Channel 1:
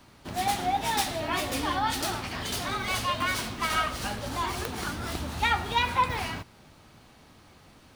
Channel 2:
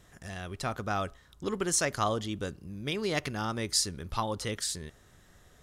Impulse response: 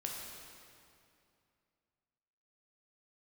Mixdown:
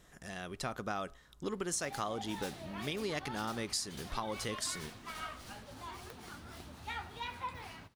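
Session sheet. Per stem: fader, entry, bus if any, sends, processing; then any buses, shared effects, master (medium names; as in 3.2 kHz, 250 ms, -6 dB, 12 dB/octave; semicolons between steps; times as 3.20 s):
-12.0 dB, 1.45 s, no send, flange 1.9 Hz, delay 4.4 ms, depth 8.9 ms, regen -55%
-2.0 dB, 0.00 s, no send, peaking EQ 93 Hz -12.5 dB 0.47 oct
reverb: none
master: compression 6:1, threshold -33 dBFS, peak gain reduction 8.5 dB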